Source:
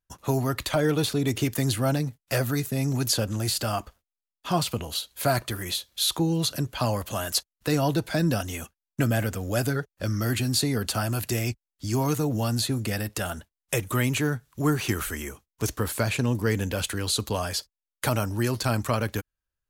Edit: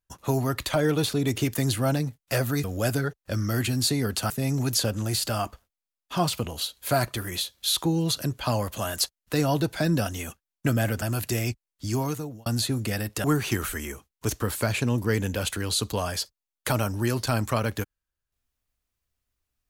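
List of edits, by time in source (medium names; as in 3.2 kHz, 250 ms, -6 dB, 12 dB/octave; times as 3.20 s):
9.36–11.02 s: move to 2.64 s
11.88–12.46 s: fade out
13.24–14.61 s: delete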